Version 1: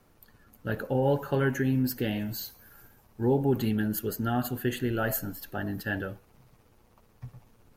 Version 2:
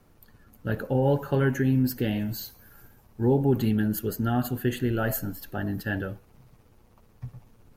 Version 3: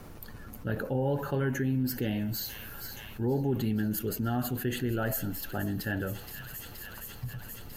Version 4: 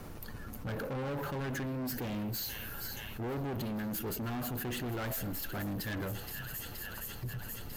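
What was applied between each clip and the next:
low shelf 310 Hz +5 dB
thin delay 0.473 s, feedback 81%, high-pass 2600 Hz, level -14 dB; fast leveller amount 50%; gain -7.5 dB
hard clip -35.5 dBFS, distortion -5 dB; gain +1 dB

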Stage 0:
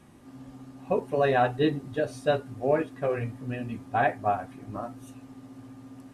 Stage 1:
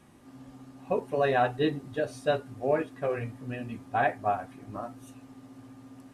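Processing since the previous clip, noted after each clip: low shelf 370 Hz -3 dB; gain -1 dB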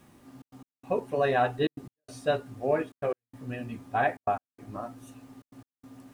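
requantised 12-bit, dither triangular; step gate "xxxx.x..xxxx" 144 bpm -60 dB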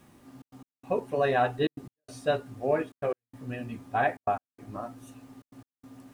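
nothing audible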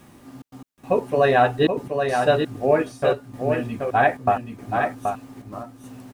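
echo 0.778 s -5.5 dB; gain +8 dB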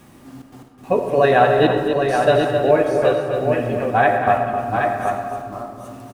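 echo 0.262 s -8 dB; digital reverb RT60 2 s, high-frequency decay 0.35×, pre-delay 35 ms, DRR 5.5 dB; gain +2 dB

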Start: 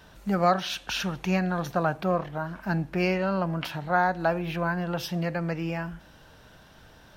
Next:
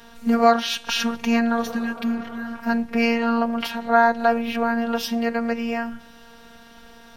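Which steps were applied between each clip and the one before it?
reverse echo 45 ms -19 dB; robotiser 232 Hz; spectral repair 1.69–2.46, 410–1600 Hz both; gain +8.5 dB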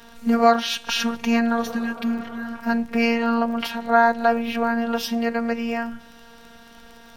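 crackle 21/s -35 dBFS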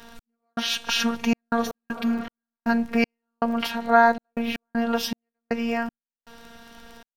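step gate "x..xxxx.x.xx..x" 79 bpm -60 dB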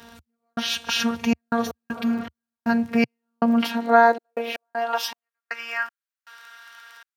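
high-pass sweep 76 Hz -> 1400 Hz, 2.55–5.45

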